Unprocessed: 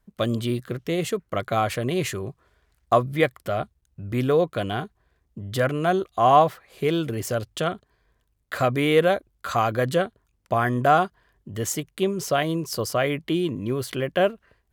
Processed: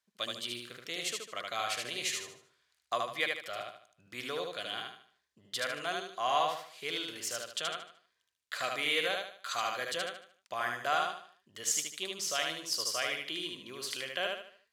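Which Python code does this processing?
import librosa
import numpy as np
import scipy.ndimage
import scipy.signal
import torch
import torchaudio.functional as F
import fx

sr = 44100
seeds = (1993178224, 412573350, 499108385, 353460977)

p1 = fx.bandpass_q(x, sr, hz=4800.0, q=0.89)
y = p1 + fx.echo_feedback(p1, sr, ms=75, feedback_pct=37, wet_db=-3.0, dry=0)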